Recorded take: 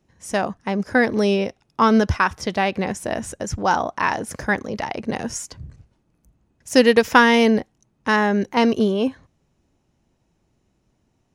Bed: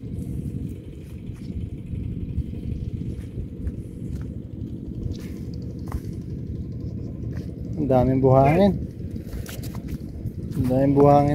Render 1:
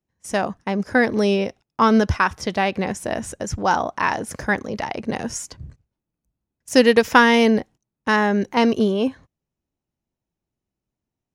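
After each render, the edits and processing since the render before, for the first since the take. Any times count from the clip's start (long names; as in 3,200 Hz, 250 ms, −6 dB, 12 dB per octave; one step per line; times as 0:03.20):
noise gate −40 dBFS, range −18 dB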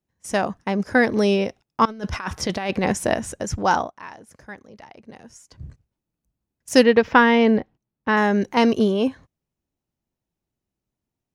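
0:01.85–0:03.15: compressor whose output falls as the input rises −23 dBFS, ratio −0.5
0:03.78–0:05.63: duck −17.5 dB, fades 0.14 s
0:06.83–0:08.17: high-frequency loss of the air 260 metres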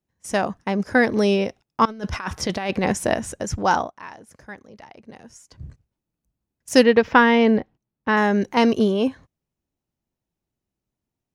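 no processing that can be heard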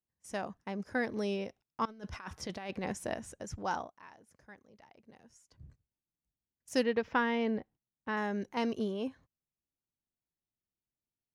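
level −15.5 dB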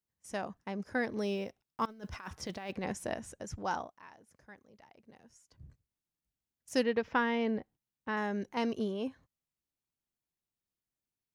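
0:01.21–0:02.72: one scale factor per block 7 bits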